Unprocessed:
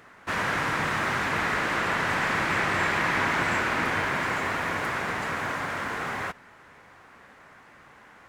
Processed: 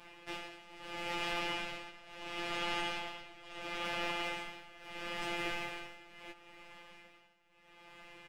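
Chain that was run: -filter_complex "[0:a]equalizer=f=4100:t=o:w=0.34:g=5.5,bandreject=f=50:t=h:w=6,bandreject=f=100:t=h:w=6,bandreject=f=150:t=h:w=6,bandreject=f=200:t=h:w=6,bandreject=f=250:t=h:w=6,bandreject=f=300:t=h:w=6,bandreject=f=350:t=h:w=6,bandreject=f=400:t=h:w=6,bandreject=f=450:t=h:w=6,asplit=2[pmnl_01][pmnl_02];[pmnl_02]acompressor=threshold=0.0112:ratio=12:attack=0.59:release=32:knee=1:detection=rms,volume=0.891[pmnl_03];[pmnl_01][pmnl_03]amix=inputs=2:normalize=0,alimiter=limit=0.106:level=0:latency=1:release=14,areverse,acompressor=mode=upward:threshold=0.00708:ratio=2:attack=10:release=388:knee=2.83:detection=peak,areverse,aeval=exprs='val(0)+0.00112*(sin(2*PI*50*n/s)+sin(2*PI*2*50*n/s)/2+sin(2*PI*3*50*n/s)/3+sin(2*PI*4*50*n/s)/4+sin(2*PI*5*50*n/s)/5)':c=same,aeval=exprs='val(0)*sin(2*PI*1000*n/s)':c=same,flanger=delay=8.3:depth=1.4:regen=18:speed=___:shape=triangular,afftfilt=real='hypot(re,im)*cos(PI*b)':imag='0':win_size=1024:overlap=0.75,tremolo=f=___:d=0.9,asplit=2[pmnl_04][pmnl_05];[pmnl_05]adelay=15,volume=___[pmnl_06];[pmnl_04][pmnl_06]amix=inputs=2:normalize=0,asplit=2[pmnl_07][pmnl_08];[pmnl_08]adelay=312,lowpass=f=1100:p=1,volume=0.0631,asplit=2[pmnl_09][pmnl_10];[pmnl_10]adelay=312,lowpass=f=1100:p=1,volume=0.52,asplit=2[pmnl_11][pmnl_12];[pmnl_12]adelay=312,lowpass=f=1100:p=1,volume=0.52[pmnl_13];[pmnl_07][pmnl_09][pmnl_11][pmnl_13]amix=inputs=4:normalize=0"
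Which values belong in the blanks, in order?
0.35, 0.74, 0.631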